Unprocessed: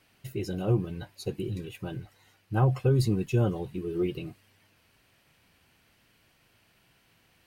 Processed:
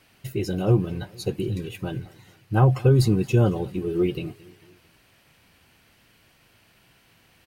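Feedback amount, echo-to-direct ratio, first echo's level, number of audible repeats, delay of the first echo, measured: 51%, -21.5 dB, -22.5 dB, 3, 0.224 s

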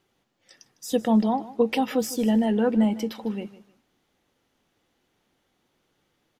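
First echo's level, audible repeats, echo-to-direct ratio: -17.0 dB, 2, -17.0 dB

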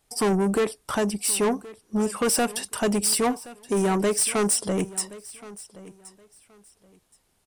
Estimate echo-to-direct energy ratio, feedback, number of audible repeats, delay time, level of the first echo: -19.0 dB, 22%, 2, 1.073 s, -19.0 dB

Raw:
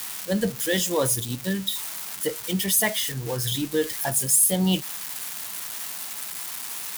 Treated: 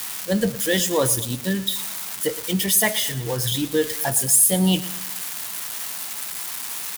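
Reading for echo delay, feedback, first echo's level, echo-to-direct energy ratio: 0.114 s, 48%, -16.0 dB, -15.0 dB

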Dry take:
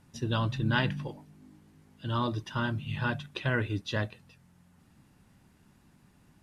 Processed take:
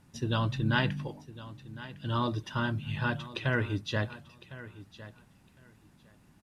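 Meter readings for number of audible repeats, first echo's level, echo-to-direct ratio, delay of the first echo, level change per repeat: 2, -16.5 dB, -16.5 dB, 1.057 s, -15.5 dB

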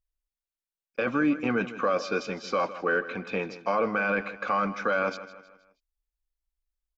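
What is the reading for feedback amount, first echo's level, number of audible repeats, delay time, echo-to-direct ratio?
43%, -14.5 dB, 3, 0.158 s, -13.5 dB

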